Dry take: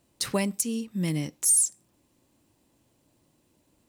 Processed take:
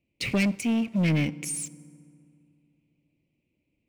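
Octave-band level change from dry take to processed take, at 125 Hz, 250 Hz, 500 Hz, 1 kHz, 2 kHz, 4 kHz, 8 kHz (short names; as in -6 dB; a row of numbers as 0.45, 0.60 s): +5.0 dB, +5.0 dB, -0.5 dB, n/a, +8.0 dB, 0.0 dB, -11.5 dB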